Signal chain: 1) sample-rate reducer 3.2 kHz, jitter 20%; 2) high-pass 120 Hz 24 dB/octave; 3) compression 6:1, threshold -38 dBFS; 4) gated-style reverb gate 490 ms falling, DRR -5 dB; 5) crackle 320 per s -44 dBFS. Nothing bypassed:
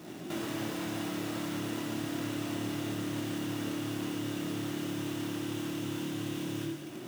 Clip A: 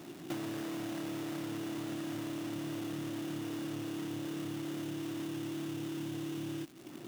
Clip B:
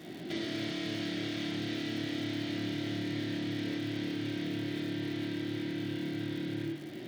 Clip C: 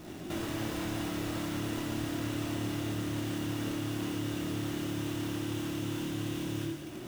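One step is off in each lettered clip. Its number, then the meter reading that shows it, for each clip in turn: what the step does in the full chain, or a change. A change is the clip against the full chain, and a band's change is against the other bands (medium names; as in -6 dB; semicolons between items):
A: 4, crest factor change +1.5 dB; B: 1, distortion -5 dB; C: 2, 125 Hz band +3.0 dB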